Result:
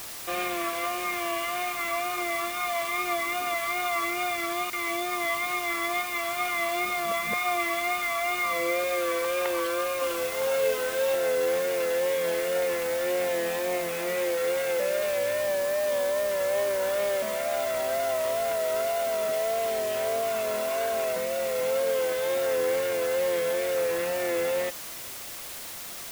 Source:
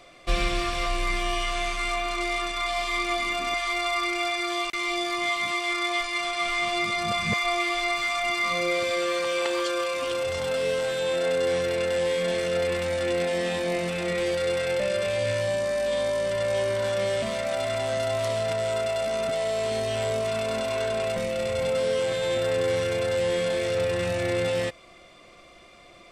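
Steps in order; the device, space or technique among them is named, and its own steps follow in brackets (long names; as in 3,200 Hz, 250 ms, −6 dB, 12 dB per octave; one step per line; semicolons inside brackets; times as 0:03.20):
wax cylinder (band-pass filter 350–2,300 Hz; tape wow and flutter; white noise bed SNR 11 dB)
0:09.98–0:11.15: double-tracking delay 32 ms −5 dB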